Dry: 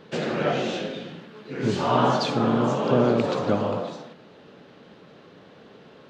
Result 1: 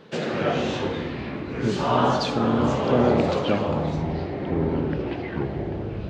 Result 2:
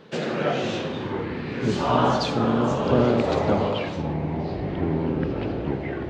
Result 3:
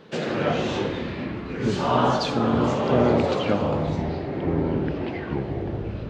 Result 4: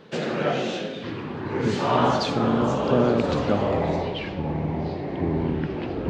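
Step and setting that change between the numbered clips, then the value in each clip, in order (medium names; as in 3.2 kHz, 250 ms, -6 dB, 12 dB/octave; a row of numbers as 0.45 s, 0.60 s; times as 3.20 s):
ever faster or slower copies, time: 139 ms, 440 ms, 91 ms, 844 ms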